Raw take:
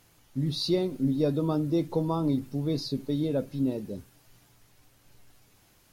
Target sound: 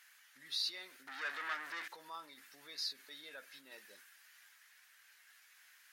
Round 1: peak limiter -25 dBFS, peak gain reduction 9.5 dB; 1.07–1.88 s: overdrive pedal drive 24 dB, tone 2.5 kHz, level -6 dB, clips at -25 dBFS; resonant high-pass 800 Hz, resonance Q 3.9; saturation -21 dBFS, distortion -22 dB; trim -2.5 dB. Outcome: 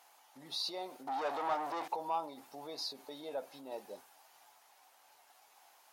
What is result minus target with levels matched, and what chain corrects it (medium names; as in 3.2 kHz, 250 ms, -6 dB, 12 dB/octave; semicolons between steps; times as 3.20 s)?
2 kHz band -10.5 dB
peak limiter -25 dBFS, peak gain reduction 9.5 dB; 1.07–1.88 s: overdrive pedal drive 24 dB, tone 2.5 kHz, level -6 dB, clips at -25 dBFS; resonant high-pass 1.7 kHz, resonance Q 3.9; saturation -21 dBFS, distortion -30 dB; trim -2.5 dB